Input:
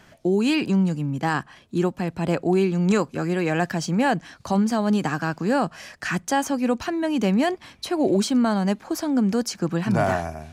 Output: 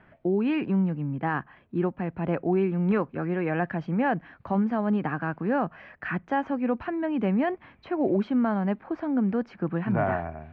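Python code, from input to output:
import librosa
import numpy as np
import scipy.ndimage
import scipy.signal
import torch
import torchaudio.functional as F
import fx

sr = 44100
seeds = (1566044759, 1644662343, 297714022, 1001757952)

y = scipy.signal.sosfilt(scipy.signal.butter(4, 2300.0, 'lowpass', fs=sr, output='sos'), x)
y = y * librosa.db_to_amplitude(-4.0)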